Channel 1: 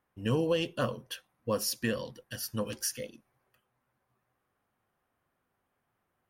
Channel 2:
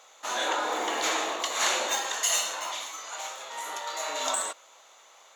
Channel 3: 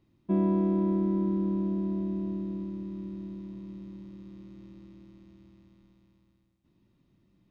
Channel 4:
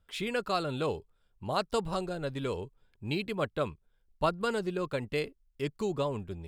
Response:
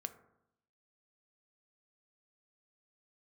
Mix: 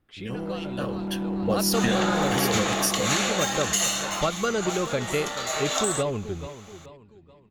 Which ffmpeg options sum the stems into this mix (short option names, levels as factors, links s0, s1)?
-filter_complex "[0:a]volume=0.891[s0];[1:a]adelay=1500,volume=0.501[s1];[2:a]lowpass=3400,asoftclip=type=hard:threshold=0.0473,volume=0.447[s2];[3:a]lowpass=5500,volume=0.596,asplit=2[s3][s4];[s4]volume=0.188[s5];[s0][s1][s3]amix=inputs=3:normalize=0,asuperstop=centerf=960:order=4:qfactor=7.5,acompressor=threshold=0.0282:ratio=6,volume=1[s6];[s5]aecho=0:1:431|862|1293|1724|2155|2586:1|0.41|0.168|0.0689|0.0283|0.0116[s7];[s2][s6][s7]amix=inputs=3:normalize=0,dynaudnorm=f=220:g=11:m=3.55"